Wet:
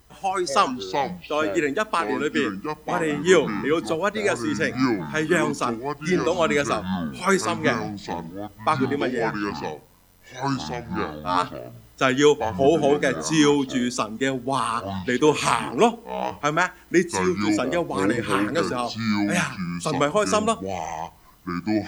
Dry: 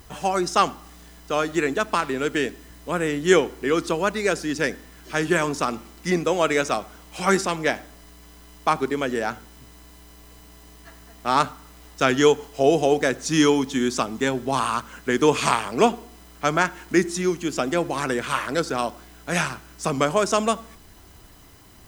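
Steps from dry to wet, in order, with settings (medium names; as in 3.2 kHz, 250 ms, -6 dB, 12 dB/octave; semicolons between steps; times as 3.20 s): 9.31–11.43 s: robot voice 89.7 Hz; spectral noise reduction 9 dB; ever faster or slower copies 146 ms, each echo -6 st, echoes 2, each echo -6 dB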